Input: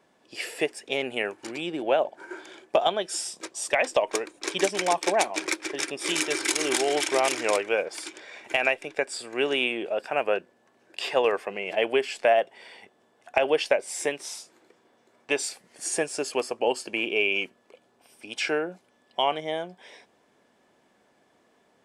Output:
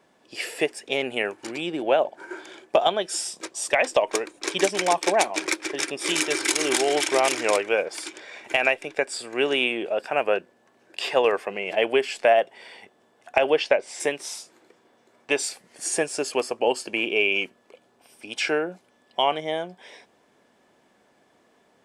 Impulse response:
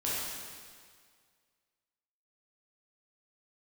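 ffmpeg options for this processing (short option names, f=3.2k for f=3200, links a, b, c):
-filter_complex "[0:a]asplit=3[a][b][c];[a]afade=t=out:st=13.53:d=0.02[d];[b]lowpass=5.4k,afade=t=in:st=13.53:d=0.02,afade=t=out:st=13.99:d=0.02[e];[c]afade=t=in:st=13.99:d=0.02[f];[d][e][f]amix=inputs=3:normalize=0,volume=2.5dB"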